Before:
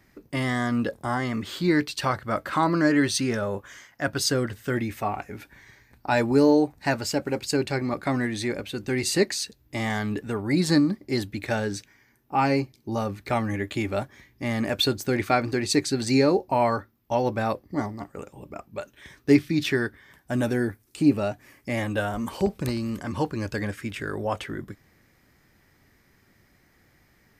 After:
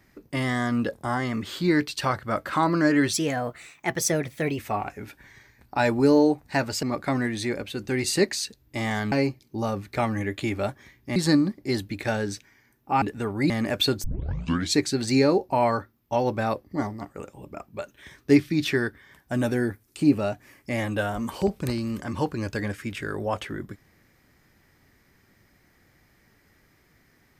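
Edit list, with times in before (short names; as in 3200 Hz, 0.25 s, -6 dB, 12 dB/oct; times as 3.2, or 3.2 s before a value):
3.13–4.91 speed 122%
7.15–7.82 cut
10.11–10.59 swap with 12.45–14.49
15.03 tape start 0.73 s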